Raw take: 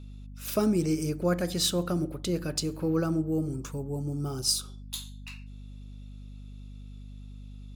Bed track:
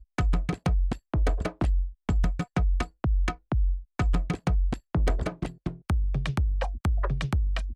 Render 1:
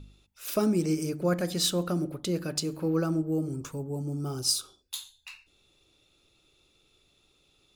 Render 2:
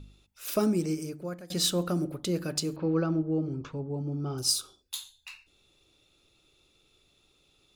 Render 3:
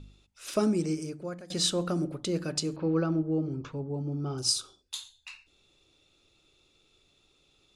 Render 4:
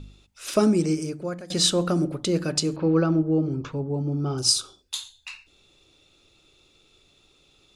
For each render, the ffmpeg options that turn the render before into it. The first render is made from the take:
-af "bandreject=f=50:t=h:w=4,bandreject=f=100:t=h:w=4,bandreject=f=150:t=h:w=4,bandreject=f=200:t=h:w=4,bandreject=f=250:t=h:w=4"
-filter_complex "[0:a]asettb=1/sr,asplit=3[s0][s1][s2];[s0]atrim=end=2.764[s3];[s1]atrim=start=2.76:end=4.38,asetpts=PTS-STARTPTS,afade=t=in:d=0.004:c=qsin,afade=t=out:st=1.616:d=0.004:c=qsin,lowpass=f=4300:w=0.5412,lowpass=f=4300:w=1.3066[s4];[s2]atrim=start=4.376[s5];[s3][s4]acrossfade=d=0.004:c1=hsin:c2=qsin[s6];[s6][s5]acrossfade=d=0.004:c1=qsin:c2=hsin,asplit=2[s7][s8];[s7]atrim=end=1.5,asetpts=PTS-STARTPTS,afade=t=out:st=0.62:d=0.88:silence=0.0841395[s9];[s8]atrim=start=1.5,asetpts=PTS-STARTPTS,afade=t=in:d=0.004:c=hsin:silence=0.0841395[s10];[s9][s10]concat=n=2:v=0:a=1"
-af "lowpass=f=9400:w=0.5412,lowpass=f=9400:w=1.3066,bandreject=f=60:t=h:w=6,bandreject=f=120:t=h:w=6,bandreject=f=180:t=h:w=6"
-af "volume=2.11"

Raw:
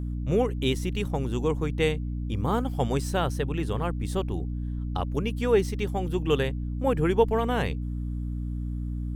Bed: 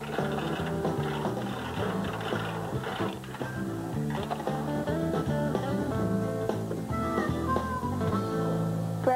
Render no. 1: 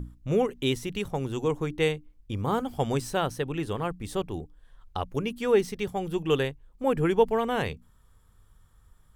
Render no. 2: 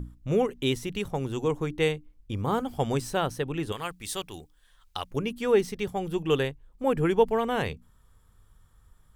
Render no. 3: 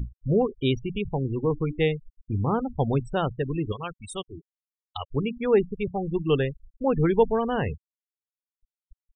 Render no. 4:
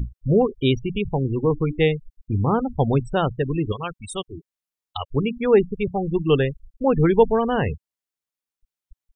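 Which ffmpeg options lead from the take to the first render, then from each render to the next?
-af "bandreject=f=60:t=h:w=6,bandreject=f=120:t=h:w=6,bandreject=f=180:t=h:w=6,bandreject=f=240:t=h:w=6,bandreject=f=300:t=h:w=6"
-filter_complex "[0:a]asettb=1/sr,asplit=3[s0][s1][s2];[s0]atrim=end=3.724[s3];[s1]atrim=start=3.72:end=5.11,asetpts=PTS-STARTPTS,afade=t=in:d=0.004:c=qsin,afade=t=out:st=1.386:d=0.004:c=qsin,tiltshelf=f=1300:g=-9.5[s4];[s2]atrim=start=5.106[s5];[s3][s4]acrossfade=d=0.004:c1=hsin:c2=qsin[s6];[s6][s5]acrossfade=d=0.004:c1=qsin:c2=hsin"
-af "afftfilt=real='re*gte(hypot(re,im),0.0398)':imag='im*gte(hypot(re,im),0.0398)':win_size=1024:overlap=0.75,lowshelf=f=230:g=7"
-af "volume=1.68"

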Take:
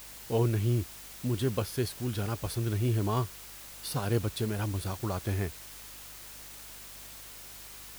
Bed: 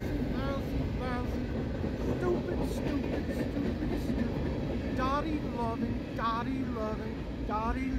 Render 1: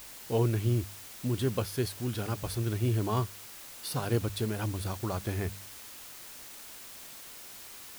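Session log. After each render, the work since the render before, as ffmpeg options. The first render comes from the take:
-af "bandreject=f=50:t=h:w=4,bandreject=f=100:t=h:w=4,bandreject=f=150:t=h:w=4,bandreject=f=200:t=h:w=4"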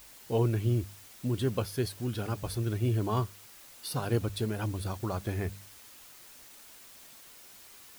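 -af "afftdn=nr=6:nf=-47"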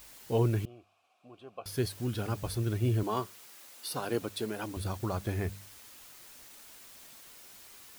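-filter_complex "[0:a]asettb=1/sr,asplit=3[s0][s1][s2];[s0]atrim=end=0.654[s3];[s1]atrim=start=0.65:end=1.66,asetpts=PTS-STARTPTS,afade=t=in:d=0.004:c=qsin,afade=t=out:st=1.006:d=0.004:c=qsin,asplit=3[s4][s5][s6];[s4]bandpass=f=730:t=q:w=8,volume=1[s7];[s5]bandpass=f=1090:t=q:w=8,volume=0.501[s8];[s6]bandpass=f=2440:t=q:w=8,volume=0.355[s9];[s7][s8][s9]amix=inputs=3:normalize=0[s10];[s2]atrim=start=1.656[s11];[s3][s10]acrossfade=d=0.004:c1=hsin:c2=qsin[s12];[s12][s11]acrossfade=d=0.004:c1=qsin:c2=hsin,asettb=1/sr,asplit=3[s13][s14][s15];[s13]atrim=end=3.034[s16];[s14]atrim=start=3.03:end=4.77,asetpts=PTS-STARTPTS,afade=t=in:d=0.004:c=qsin,afade=t=out:st=1.736:d=0.004:c=qsin,highpass=240[s17];[s15]atrim=start=4.766[s18];[s16][s17]acrossfade=d=0.004:c1=hsin:c2=qsin[s19];[s19][s18]acrossfade=d=0.004:c1=qsin:c2=hsin"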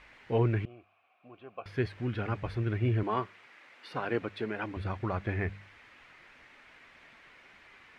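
-af "lowpass=f=2100:t=q:w=2.6"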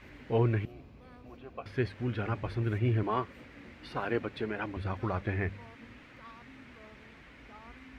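-filter_complex "[1:a]volume=0.1[s0];[0:a][s0]amix=inputs=2:normalize=0"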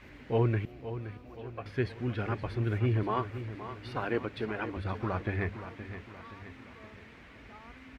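-af "aecho=1:1:521|1042|1563|2084|2605:0.266|0.13|0.0639|0.0313|0.0153"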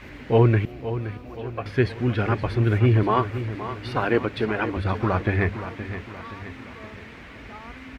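-af "volume=3.16"

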